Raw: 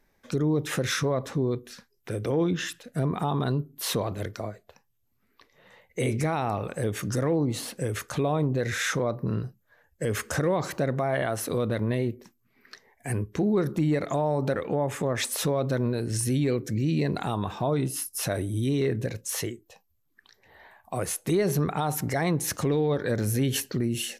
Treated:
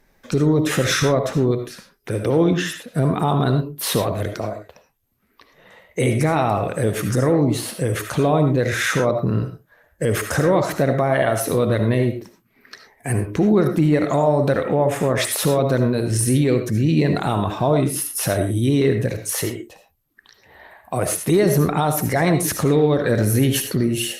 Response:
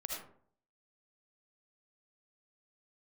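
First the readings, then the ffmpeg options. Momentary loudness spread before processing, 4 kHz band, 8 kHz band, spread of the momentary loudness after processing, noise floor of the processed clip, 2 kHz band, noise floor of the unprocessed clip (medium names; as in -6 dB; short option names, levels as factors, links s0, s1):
7 LU, +7.0 dB, +7.0 dB, 8 LU, -62 dBFS, +8.0 dB, -70 dBFS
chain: -filter_complex "[0:a]asplit=2[s0][s1];[1:a]atrim=start_sample=2205,atrim=end_sample=6174[s2];[s1][s2]afir=irnorm=-1:irlink=0,volume=1.12[s3];[s0][s3]amix=inputs=2:normalize=0,volume=1.41" -ar 48000 -c:a libopus -b:a 48k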